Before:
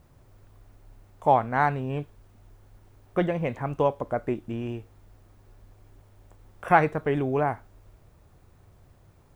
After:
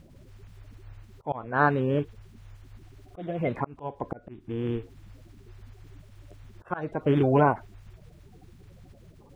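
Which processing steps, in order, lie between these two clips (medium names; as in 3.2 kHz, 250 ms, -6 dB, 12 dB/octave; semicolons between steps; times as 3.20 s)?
coarse spectral quantiser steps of 30 dB; low-pass 3.5 kHz 6 dB/octave; slow attack 468 ms; trim +5.5 dB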